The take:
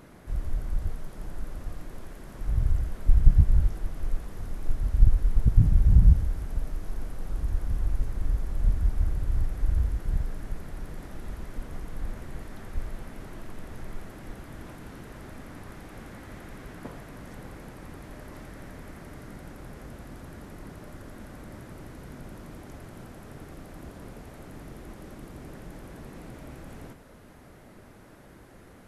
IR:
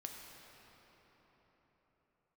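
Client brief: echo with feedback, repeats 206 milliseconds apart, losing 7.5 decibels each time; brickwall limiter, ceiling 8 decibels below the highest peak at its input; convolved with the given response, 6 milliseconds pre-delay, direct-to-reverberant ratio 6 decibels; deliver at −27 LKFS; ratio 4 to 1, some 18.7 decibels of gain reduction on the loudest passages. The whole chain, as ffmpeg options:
-filter_complex "[0:a]acompressor=threshold=-33dB:ratio=4,alimiter=level_in=6dB:limit=-24dB:level=0:latency=1,volume=-6dB,aecho=1:1:206|412|618|824|1030:0.422|0.177|0.0744|0.0312|0.0131,asplit=2[link_01][link_02];[1:a]atrim=start_sample=2205,adelay=6[link_03];[link_02][link_03]afir=irnorm=-1:irlink=0,volume=-3dB[link_04];[link_01][link_04]amix=inputs=2:normalize=0,volume=15.5dB"

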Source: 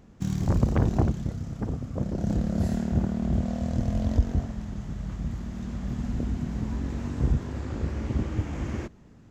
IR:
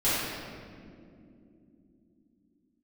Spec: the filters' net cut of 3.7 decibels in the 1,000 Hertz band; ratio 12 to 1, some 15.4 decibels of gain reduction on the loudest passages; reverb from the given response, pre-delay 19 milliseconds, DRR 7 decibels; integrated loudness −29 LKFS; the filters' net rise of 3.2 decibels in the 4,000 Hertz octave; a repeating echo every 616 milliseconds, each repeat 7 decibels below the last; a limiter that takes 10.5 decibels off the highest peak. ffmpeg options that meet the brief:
-filter_complex "[0:a]equalizer=frequency=1000:width_type=o:gain=-5.5,equalizer=frequency=4000:width_type=o:gain=4.5,acompressor=threshold=-31dB:ratio=12,alimiter=level_in=8.5dB:limit=-24dB:level=0:latency=1,volume=-8.5dB,aecho=1:1:616|1232|1848|2464|3080:0.447|0.201|0.0905|0.0407|0.0183,asplit=2[link_01][link_02];[1:a]atrim=start_sample=2205,adelay=19[link_03];[link_02][link_03]afir=irnorm=-1:irlink=0,volume=-20.5dB[link_04];[link_01][link_04]amix=inputs=2:normalize=0,volume=10.5dB"

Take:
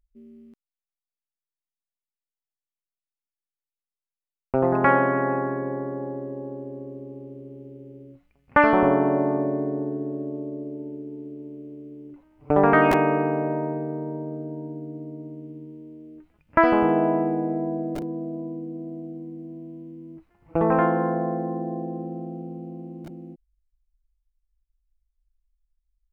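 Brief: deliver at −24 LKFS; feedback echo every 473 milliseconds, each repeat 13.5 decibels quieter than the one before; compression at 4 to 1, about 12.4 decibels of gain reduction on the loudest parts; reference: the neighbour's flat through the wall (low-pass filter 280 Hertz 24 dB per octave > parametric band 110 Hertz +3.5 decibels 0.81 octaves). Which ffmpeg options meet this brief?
ffmpeg -i in.wav -af "acompressor=threshold=-27dB:ratio=4,lowpass=frequency=280:width=0.5412,lowpass=frequency=280:width=1.3066,equalizer=frequency=110:width_type=o:width=0.81:gain=3.5,aecho=1:1:473|946:0.211|0.0444,volume=13.5dB" out.wav

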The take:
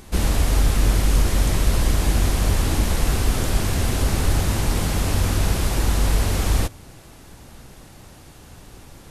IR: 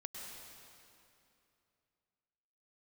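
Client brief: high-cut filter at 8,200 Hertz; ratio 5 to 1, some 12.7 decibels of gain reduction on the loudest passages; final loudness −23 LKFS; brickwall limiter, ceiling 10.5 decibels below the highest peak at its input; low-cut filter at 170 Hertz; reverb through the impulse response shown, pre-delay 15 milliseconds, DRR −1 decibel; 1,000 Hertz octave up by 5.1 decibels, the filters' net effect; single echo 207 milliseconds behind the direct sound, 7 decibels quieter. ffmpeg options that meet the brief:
-filter_complex "[0:a]highpass=170,lowpass=8200,equalizer=frequency=1000:width_type=o:gain=6.5,acompressor=threshold=-37dB:ratio=5,alimiter=level_in=12dB:limit=-24dB:level=0:latency=1,volume=-12dB,aecho=1:1:207:0.447,asplit=2[link_01][link_02];[1:a]atrim=start_sample=2205,adelay=15[link_03];[link_02][link_03]afir=irnorm=-1:irlink=0,volume=3dB[link_04];[link_01][link_04]amix=inputs=2:normalize=0,volume=17.5dB"

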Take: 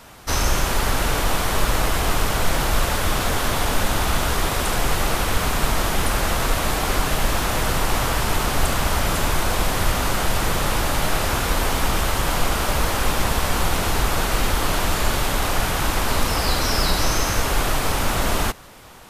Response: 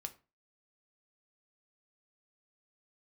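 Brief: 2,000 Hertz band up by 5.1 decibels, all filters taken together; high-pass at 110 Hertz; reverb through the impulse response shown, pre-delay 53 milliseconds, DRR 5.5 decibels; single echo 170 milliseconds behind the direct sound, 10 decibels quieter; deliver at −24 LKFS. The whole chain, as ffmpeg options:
-filter_complex "[0:a]highpass=110,equalizer=frequency=2000:width_type=o:gain=6.5,aecho=1:1:170:0.316,asplit=2[link_01][link_02];[1:a]atrim=start_sample=2205,adelay=53[link_03];[link_02][link_03]afir=irnorm=-1:irlink=0,volume=-2.5dB[link_04];[link_01][link_04]amix=inputs=2:normalize=0,volume=-5dB"

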